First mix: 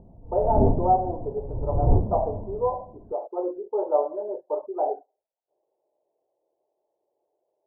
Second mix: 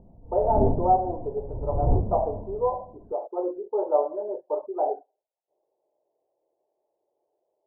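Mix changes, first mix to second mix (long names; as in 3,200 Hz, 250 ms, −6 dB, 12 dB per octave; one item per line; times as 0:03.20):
background −4.5 dB
reverb: on, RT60 0.50 s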